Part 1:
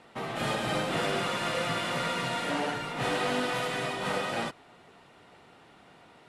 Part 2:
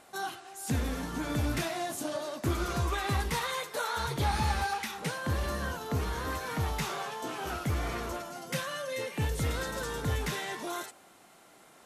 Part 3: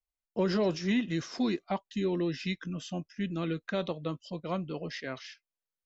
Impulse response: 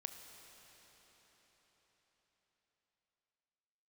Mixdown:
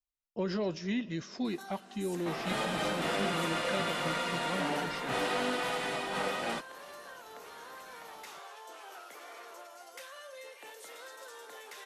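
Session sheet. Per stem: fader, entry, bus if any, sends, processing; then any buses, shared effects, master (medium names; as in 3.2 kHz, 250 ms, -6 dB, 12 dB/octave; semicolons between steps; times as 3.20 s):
-2.5 dB, 2.10 s, no send, peaking EQ 120 Hz -11.5 dB 0.6 oct
-3.0 dB, 1.45 s, send -4.5 dB, high-pass 450 Hz 24 dB/octave; compression 2.5:1, threshold -51 dBFS, peak gain reduction 15 dB
-6.5 dB, 0.00 s, send -9.5 dB, none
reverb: on, RT60 5.0 s, pre-delay 21 ms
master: none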